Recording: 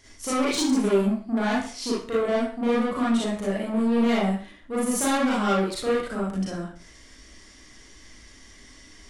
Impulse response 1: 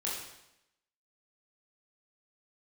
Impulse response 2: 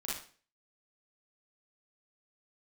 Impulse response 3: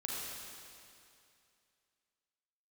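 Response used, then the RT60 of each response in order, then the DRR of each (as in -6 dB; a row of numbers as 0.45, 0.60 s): 2; 0.85, 0.40, 2.5 s; -6.0, -7.0, -4.5 dB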